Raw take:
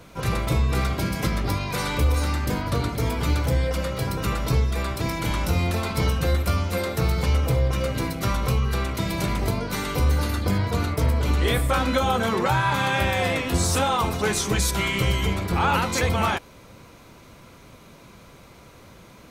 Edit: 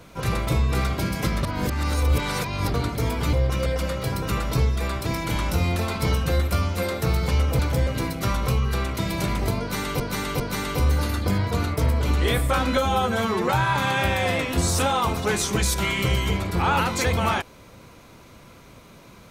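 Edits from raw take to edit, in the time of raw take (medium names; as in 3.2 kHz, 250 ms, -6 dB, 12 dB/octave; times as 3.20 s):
1.43–2.74 s: reverse
3.33–3.61 s: swap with 7.54–7.87 s
9.60–10.00 s: loop, 3 plays
11.97–12.44 s: stretch 1.5×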